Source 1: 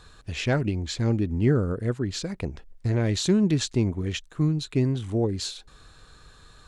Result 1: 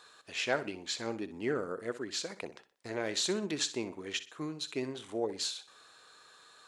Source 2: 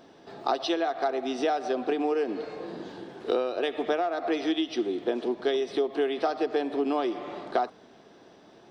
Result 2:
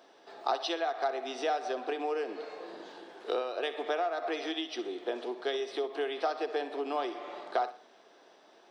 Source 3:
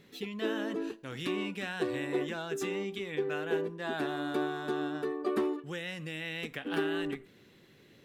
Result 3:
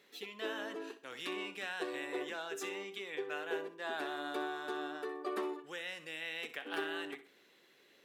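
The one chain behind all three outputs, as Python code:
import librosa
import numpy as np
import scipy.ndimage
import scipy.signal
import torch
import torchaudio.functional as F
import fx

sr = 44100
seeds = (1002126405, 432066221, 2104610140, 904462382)

p1 = scipy.signal.sosfilt(scipy.signal.butter(2, 490.0, 'highpass', fs=sr, output='sos'), x)
p2 = p1 + fx.echo_feedback(p1, sr, ms=62, feedback_pct=33, wet_db=-14, dry=0)
y = p2 * librosa.db_to_amplitude(-2.5)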